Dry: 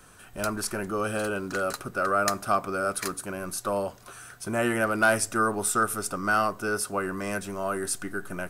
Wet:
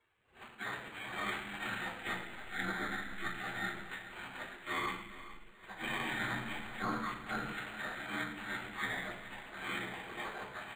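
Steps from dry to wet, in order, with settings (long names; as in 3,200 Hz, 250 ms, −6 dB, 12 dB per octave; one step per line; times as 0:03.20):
ceiling on every frequency bin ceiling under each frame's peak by 15 dB
treble cut that deepens with the level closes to 2,100 Hz, closed at −22.5 dBFS
gate on every frequency bin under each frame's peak −20 dB weak
parametric band 8,100 Hz +14 dB 0.61 octaves
compressor whose output falls as the input rises −47 dBFS, ratio −0.5
speed change −21%
high-frequency loss of the air 230 metres
repeating echo 423 ms, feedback 31%, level −15 dB
convolution reverb, pre-delay 3 ms, DRR −5.5 dB
linearly interpolated sample-rate reduction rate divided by 8×
level +1.5 dB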